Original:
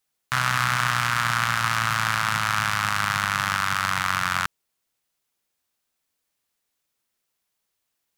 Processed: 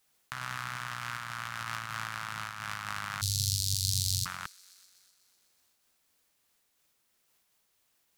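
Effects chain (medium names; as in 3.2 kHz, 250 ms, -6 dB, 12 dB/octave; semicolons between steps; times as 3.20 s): 3.21–4.26 s: Chebyshev band-stop 120–4200 Hz, order 4; compressor with a negative ratio -34 dBFS, ratio -1; on a send: feedback echo behind a high-pass 124 ms, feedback 74%, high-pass 2.8 kHz, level -21 dB; on the sum: random flutter of the level, depth 55%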